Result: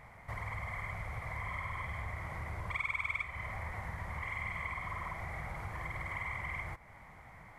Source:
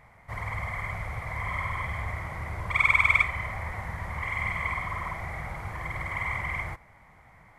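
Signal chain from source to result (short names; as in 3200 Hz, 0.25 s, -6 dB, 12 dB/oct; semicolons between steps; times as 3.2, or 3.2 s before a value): compressor 2.5:1, threshold -42 dBFS, peak gain reduction 16.5 dB; gain +1 dB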